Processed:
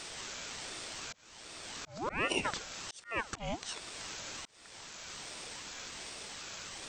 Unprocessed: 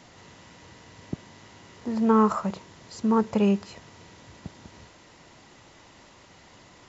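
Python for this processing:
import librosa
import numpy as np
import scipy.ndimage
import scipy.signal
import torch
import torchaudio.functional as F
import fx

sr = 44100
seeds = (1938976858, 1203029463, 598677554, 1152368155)

y = fx.tilt_eq(x, sr, slope=3.5)
y = fx.auto_swell(y, sr, attack_ms=693.0)
y = fx.ring_lfo(y, sr, carrier_hz=1000.0, swing_pct=65, hz=1.3)
y = y * 10.0 ** (7.5 / 20.0)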